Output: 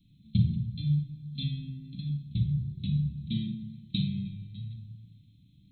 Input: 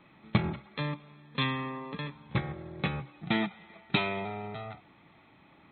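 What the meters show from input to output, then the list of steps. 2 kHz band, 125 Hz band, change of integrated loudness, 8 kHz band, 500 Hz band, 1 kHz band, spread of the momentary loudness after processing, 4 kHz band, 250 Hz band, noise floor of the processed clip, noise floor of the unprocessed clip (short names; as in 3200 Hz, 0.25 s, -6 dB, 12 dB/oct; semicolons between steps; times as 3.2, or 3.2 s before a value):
under -20 dB, +7.0 dB, +1.5 dB, n/a, under -25 dB, under -40 dB, 12 LU, -4.0 dB, +1.5 dB, -60 dBFS, -60 dBFS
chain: inverse Chebyshev band-stop 550–1500 Hz, stop band 70 dB; shoebox room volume 2100 m³, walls furnished, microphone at 2.5 m; gain +3.5 dB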